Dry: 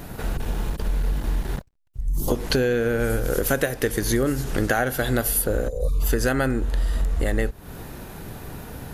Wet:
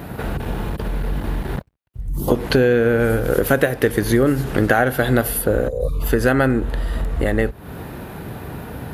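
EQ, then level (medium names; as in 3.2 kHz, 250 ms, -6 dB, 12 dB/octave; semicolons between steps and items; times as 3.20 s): high-pass 63 Hz 12 dB/octave; treble shelf 4.5 kHz -6 dB; peaking EQ 6.4 kHz -8.5 dB 1 oct; +6.5 dB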